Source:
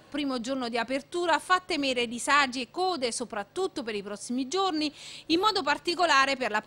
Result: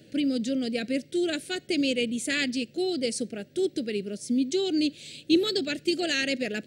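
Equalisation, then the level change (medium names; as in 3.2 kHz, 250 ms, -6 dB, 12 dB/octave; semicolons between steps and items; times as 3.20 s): high-pass 130 Hz 12 dB/octave; Butterworth band-stop 1 kHz, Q 0.67; bass shelf 460 Hz +8 dB; 0.0 dB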